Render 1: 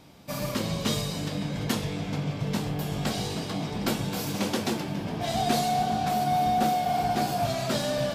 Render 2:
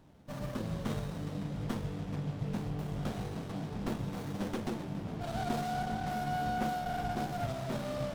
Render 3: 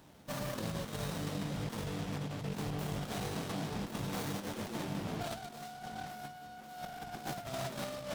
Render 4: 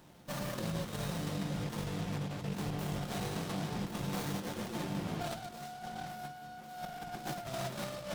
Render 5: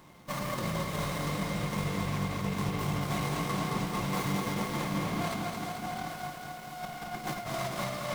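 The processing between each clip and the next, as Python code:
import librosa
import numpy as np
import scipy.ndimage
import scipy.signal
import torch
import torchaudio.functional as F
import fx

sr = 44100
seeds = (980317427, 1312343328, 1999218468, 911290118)

y1 = fx.low_shelf(x, sr, hz=84.0, db=10.5)
y1 = fx.running_max(y1, sr, window=17)
y1 = y1 * 10.0 ** (-8.5 / 20.0)
y2 = fx.tilt_eq(y1, sr, slope=2.0)
y2 = fx.over_compress(y2, sr, threshold_db=-41.0, ratio=-0.5)
y2 = y2 * 10.0 ** (2.0 / 20.0)
y3 = fx.room_shoebox(y2, sr, seeds[0], volume_m3=3600.0, walls='furnished', distance_m=0.89)
y4 = fx.small_body(y3, sr, hz=(1100.0, 2100.0), ring_ms=35, db=13)
y4 = fx.echo_crushed(y4, sr, ms=220, feedback_pct=80, bits=9, wet_db=-5.0)
y4 = y4 * 10.0 ** (2.5 / 20.0)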